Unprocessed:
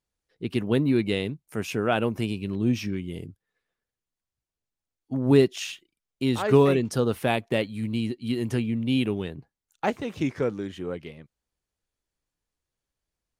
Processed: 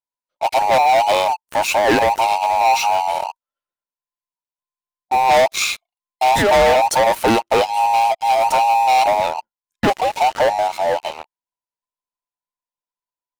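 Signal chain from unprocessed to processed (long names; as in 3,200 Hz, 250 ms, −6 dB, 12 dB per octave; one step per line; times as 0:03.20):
frequency inversion band by band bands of 1,000 Hz
leveller curve on the samples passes 5
level −3 dB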